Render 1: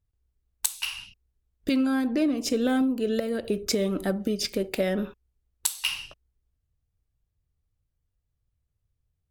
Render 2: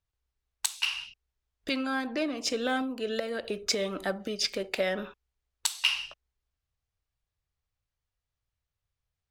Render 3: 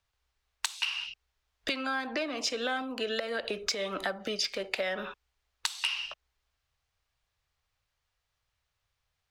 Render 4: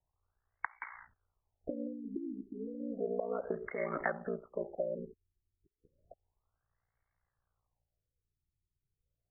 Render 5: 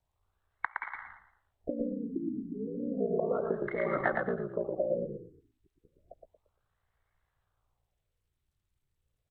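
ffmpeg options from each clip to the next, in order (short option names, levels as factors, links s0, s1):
-filter_complex "[0:a]acrossover=split=580 7100:gain=0.224 1 0.2[s0][s1][s2];[s0][s1][s2]amix=inputs=3:normalize=0,volume=1.33"
-filter_complex "[0:a]acrossover=split=300|550|6400[s0][s1][s2][s3];[s2]aeval=exprs='0.335*sin(PI/2*1.78*val(0)/0.335)':c=same[s4];[s0][s1][s4][s3]amix=inputs=4:normalize=0,acompressor=threshold=0.0251:ratio=5,volume=1.26"
-af "aeval=exprs='val(0)*sin(2*PI*29*n/s)':c=same,afftfilt=real='re*lt(b*sr/1024,390*pow(2300/390,0.5+0.5*sin(2*PI*0.32*pts/sr)))':imag='im*lt(b*sr/1024,390*pow(2300/390,0.5+0.5*sin(2*PI*0.32*pts/sr)))':win_size=1024:overlap=0.75,volume=1.19"
-filter_complex "[0:a]asplit=2[s0][s1];[s1]asplit=4[s2][s3][s4][s5];[s2]adelay=115,afreqshift=-31,volume=0.668[s6];[s3]adelay=230,afreqshift=-62,volume=0.214[s7];[s4]adelay=345,afreqshift=-93,volume=0.0684[s8];[s5]adelay=460,afreqshift=-124,volume=0.0219[s9];[s6][s7][s8][s9]amix=inputs=4:normalize=0[s10];[s0][s10]amix=inputs=2:normalize=0,volume=1.58" -ar 32000 -c:a sbc -b:a 64k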